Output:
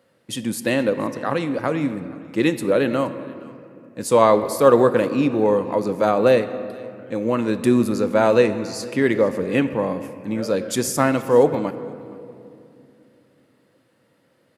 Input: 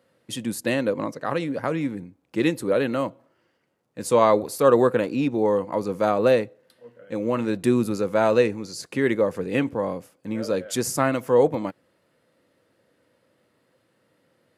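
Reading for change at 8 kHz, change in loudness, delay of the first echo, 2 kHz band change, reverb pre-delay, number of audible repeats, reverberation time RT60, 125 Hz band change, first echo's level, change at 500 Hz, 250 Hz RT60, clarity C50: +3.0 dB, +3.5 dB, 470 ms, +3.5 dB, 3 ms, 1, 2.7 s, +3.0 dB, −23.0 dB, +3.5 dB, 3.9 s, 12.0 dB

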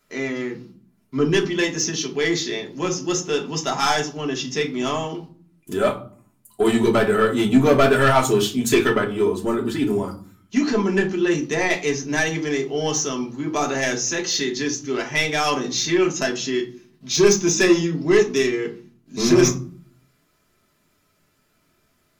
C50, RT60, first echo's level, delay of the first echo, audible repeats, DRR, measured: 12.5 dB, 0.45 s, no echo audible, no echo audible, no echo audible, 0.0 dB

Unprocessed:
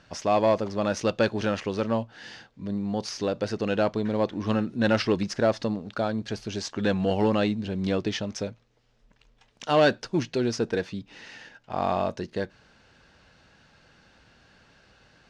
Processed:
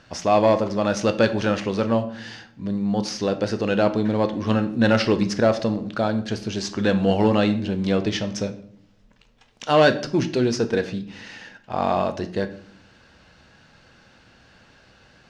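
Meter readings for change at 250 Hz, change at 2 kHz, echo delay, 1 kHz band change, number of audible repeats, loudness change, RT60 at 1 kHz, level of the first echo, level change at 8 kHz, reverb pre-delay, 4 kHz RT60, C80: +5.5 dB, +4.5 dB, no echo audible, +4.5 dB, no echo audible, +4.5 dB, 0.50 s, no echo audible, +4.5 dB, 4 ms, 0.40 s, 17.5 dB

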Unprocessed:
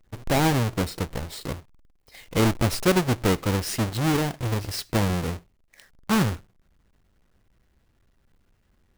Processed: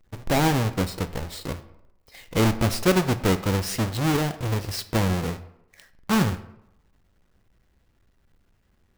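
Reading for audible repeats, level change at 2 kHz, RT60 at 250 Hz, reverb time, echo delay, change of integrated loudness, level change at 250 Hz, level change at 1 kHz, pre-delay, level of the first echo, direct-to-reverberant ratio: no echo audible, +0.5 dB, 0.75 s, 0.80 s, no echo audible, +0.5 dB, +0.5 dB, +0.5 dB, 7 ms, no echo audible, 11.0 dB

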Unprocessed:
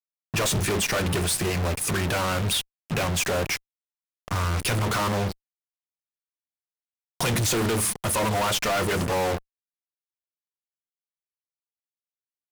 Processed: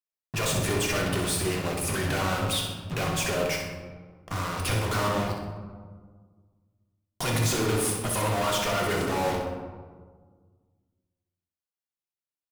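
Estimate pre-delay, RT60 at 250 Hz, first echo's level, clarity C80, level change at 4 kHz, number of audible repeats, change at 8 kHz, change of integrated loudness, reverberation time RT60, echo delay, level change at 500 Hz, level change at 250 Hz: 3 ms, 2.0 s, −6.5 dB, 5.0 dB, −2.5 dB, 2, −3.5 dB, −2.5 dB, 1.6 s, 63 ms, −1.0 dB, −1.5 dB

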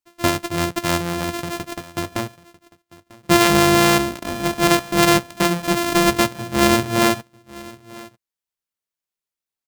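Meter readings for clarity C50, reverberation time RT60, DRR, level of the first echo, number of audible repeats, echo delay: no reverb audible, no reverb audible, no reverb audible, −21.5 dB, 1, 945 ms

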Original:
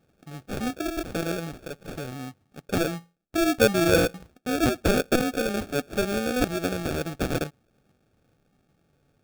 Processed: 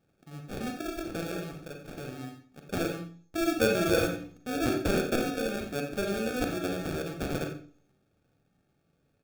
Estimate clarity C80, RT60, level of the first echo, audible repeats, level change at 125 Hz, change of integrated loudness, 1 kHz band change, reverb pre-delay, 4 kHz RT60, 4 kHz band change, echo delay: 9.5 dB, 0.45 s, −12.5 dB, 1, −5.0 dB, −5.0 dB, −5.0 dB, 35 ms, 0.50 s, −5.5 dB, 89 ms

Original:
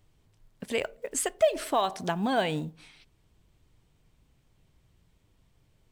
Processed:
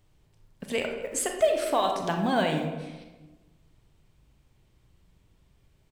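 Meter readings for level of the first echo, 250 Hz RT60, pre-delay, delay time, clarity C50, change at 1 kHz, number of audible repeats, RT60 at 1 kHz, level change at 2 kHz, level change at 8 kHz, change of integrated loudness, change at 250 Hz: −20.0 dB, 1.4 s, 31 ms, 224 ms, 4.5 dB, +2.0 dB, 1, 1.1 s, +2.0 dB, +0.5 dB, +1.5 dB, +2.5 dB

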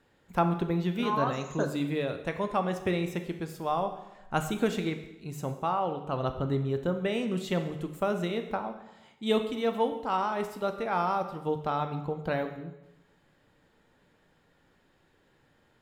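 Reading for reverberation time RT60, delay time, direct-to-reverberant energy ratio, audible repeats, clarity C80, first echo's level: 0.95 s, no echo audible, 6.5 dB, no echo audible, 11.5 dB, no echo audible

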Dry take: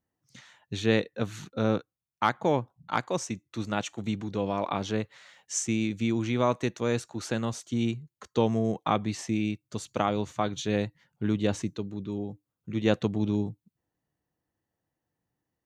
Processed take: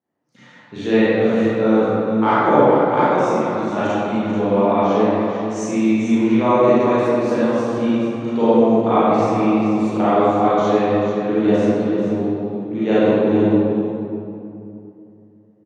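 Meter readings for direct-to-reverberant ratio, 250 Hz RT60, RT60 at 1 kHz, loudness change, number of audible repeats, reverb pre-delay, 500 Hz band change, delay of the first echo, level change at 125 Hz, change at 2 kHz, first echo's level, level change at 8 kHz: −13.0 dB, 3.2 s, 2.6 s, +12.5 dB, 1, 32 ms, +15.0 dB, 439 ms, +5.5 dB, +9.0 dB, −8.0 dB, can't be measured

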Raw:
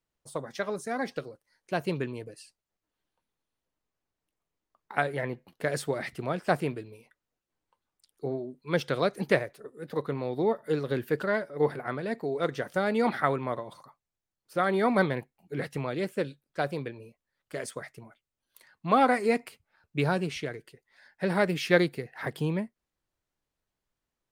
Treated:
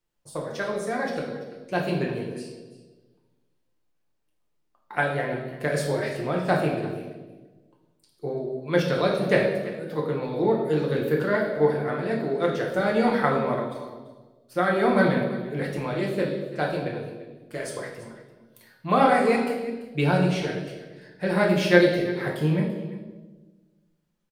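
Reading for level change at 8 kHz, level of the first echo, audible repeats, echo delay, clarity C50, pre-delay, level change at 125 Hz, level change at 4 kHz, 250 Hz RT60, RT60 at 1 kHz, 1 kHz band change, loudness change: can't be measured, −17.0 dB, 1, 339 ms, 4.0 dB, 6 ms, +6.5 dB, +4.5 dB, 1.7 s, 1.2 s, +3.5 dB, +5.0 dB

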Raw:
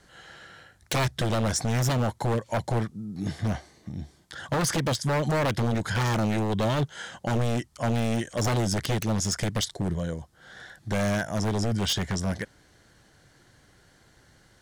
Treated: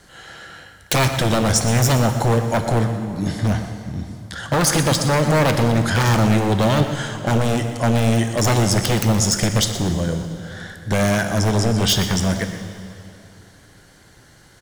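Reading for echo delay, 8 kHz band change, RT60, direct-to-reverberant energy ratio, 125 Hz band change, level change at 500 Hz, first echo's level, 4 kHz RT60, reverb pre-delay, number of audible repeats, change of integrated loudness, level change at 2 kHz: 122 ms, +10.5 dB, 2.7 s, 6.0 dB, +8.5 dB, +8.5 dB, −13.0 dB, 2.2 s, 11 ms, 1, +8.5 dB, +8.5 dB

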